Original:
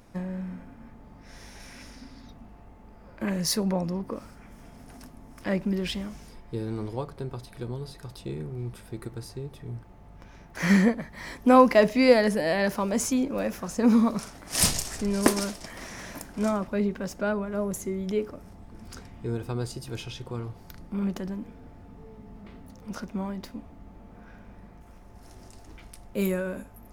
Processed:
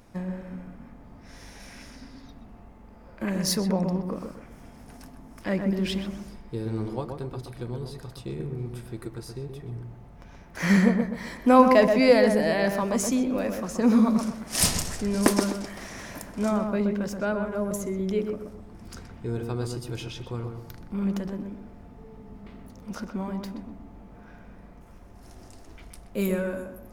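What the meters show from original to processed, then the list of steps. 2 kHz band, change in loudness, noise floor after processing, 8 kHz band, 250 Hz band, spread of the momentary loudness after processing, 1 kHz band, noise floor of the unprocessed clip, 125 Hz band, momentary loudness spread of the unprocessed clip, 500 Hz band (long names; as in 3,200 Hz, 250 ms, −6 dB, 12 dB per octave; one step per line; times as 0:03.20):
+0.5 dB, +1.0 dB, −48 dBFS, 0.0 dB, +1.5 dB, 21 LU, +1.0 dB, −50 dBFS, +1.5 dB, 19 LU, +1.0 dB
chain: feedback echo with a low-pass in the loop 126 ms, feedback 38%, low-pass 1,500 Hz, level −4.5 dB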